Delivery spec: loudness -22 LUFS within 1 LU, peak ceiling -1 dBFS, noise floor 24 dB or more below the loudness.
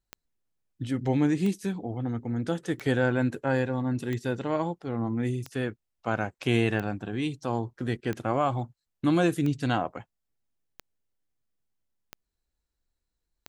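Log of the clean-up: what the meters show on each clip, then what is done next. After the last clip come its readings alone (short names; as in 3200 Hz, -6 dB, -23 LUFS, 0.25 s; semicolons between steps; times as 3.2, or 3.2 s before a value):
clicks 11; loudness -29.0 LUFS; peak -12.5 dBFS; loudness target -22.0 LUFS
-> de-click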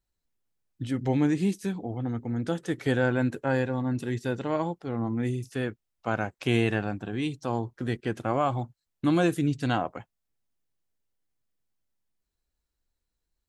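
clicks 0; loudness -29.0 LUFS; peak -12.5 dBFS; loudness target -22.0 LUFS
-> gain +7 dB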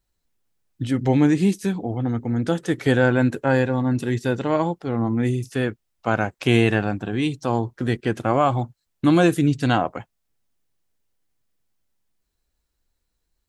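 loudness -22.0 LUFS; peak -5.5 dBFS; noise floor -76 dBFS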